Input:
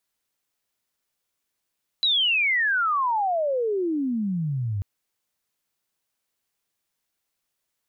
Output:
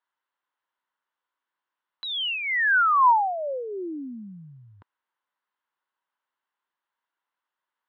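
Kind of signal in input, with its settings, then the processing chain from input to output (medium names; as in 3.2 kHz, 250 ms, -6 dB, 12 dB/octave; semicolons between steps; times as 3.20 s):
sweep logarithmic 4 kHz -> 95 Hz -18 dBFS -> -24 dBFS 2.79 s
cabinet simulation 440–2900 Hz, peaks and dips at 450 Hz -6 dB, 670 Hz -6 dB, 980 Hz +9 dB, 1.5 kHz +4 dB, 2.4 kHz -9 dB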